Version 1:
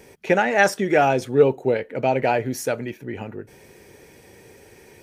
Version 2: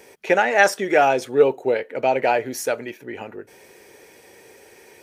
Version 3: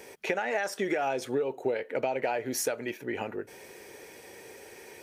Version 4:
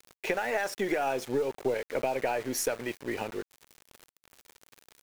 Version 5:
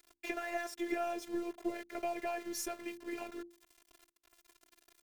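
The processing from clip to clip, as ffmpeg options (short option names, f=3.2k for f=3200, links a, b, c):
-af "bass=f=250:g=-14,treble=f=4k:g=0,volume=2dB"
-af "alimiter=limit=-12dB:level=0:latency=1:release=248,acompressor=threshold=-26dB:ratio=6"
-af "aeval=exprs='val(0)*gte(abs(val(0)),0.01)':c=same,aeval=exprs='0.224*(cos(1*acos(clip(val(0)/0.224,-1,1)))-cos(1*PI/2))+0.0126*(cos(4*acos(clip(val(0)/0.224,-1,1)))-cos(4*PI/2))':c=same"
-af "bandreject=f=60:t=h:w=6,bandreject=f=120:t=h:w=6,bandreject=f=180:t=h:w=6,bandreject=f=240:t=h:w=6,bandreject=f=300:t=h:w=6,bandreject=f=360:t=h:w=6,afftfilt=real='hypot(re,im)*cos(PI*b)':imag='0':win_size=512:overlap=0.75,volume=-4.5dB"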